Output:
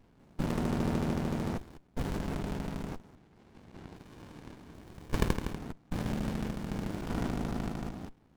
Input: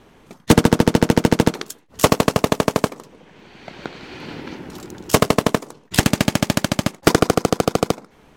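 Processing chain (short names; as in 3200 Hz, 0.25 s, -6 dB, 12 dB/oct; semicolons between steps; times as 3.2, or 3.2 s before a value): stepped spectrum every 0.2 s; 3.96–5.55 tilt shelf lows -6.5 dB, about 1100 Hz; running maximum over 65 samples; gain -8 dB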